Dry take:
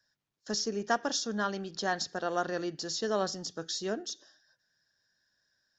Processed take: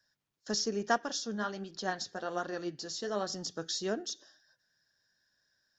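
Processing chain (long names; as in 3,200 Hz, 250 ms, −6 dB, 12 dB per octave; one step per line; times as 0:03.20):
0:00.98–0:03.30: flanger 1.3 Hz, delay 2.5 ms, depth 8.1 ms, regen +57%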